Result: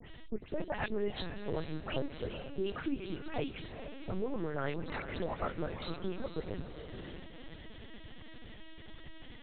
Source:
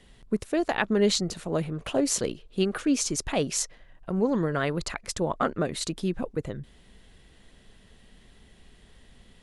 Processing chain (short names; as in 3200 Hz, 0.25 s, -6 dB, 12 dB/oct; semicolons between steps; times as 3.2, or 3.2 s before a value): spectral delay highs late, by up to 0.143 s; notches 60/120/180/240/300/360 Hz; compressor 2.5:1, threshold -46 dBFS, peak gain reduction 18.5 dB; diffused feedback echo 0.458 s, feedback 46%, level -8.5 dB; LPC vocoder at 8 kHz pitch kept; gain +5.5 dB